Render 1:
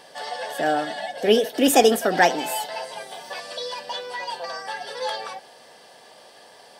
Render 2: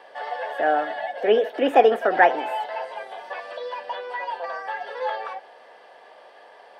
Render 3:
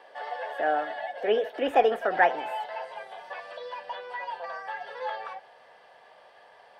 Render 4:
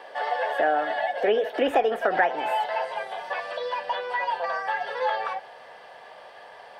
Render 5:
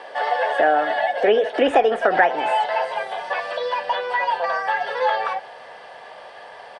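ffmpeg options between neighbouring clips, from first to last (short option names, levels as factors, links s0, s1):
-filter_complex "[0:a]acrossover=split=350 2700:gain=0.1 1 0.0794[s0][s1][s2];[s0][s1][s2]amix=inputs=3:normalize=0,acrossover=split=3300[s3][s4];[s4]acompressor=threshold=0.002:ratio=4:attack=1:release=60[s5];[s3][s5]amix=inputs=2:normalize=0,volume=1.33"
-af "asubboost=boost=11.5:cutoff=95,volume=0.596"
-af "acompressor=threshold=0.0398:ratio=4,volume=2.66"
-af "aresample=22050,aresample=44100,volume=1.88"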